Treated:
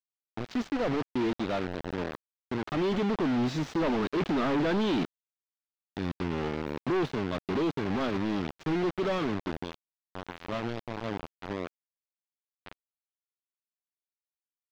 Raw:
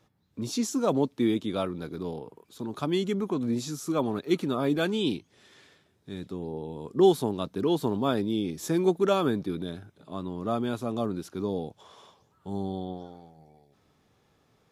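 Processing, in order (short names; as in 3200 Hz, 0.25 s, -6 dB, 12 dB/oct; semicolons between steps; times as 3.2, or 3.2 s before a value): Doppler pass-by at 4.66, 13 m/s, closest 18 m; companded quantiser 2-bit; air absorption 220 m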